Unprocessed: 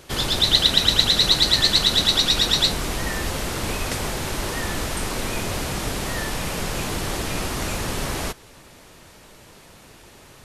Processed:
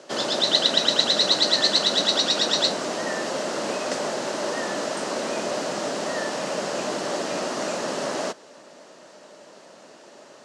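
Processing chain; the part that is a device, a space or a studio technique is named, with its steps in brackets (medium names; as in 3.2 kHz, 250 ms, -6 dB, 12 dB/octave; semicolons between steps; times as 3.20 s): television speaker (cabinet simulation 210–7400 Hz, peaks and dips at 600 Hz +10 dB, 2.3 kHz -7 dB, 3.5 kHz -5 dB)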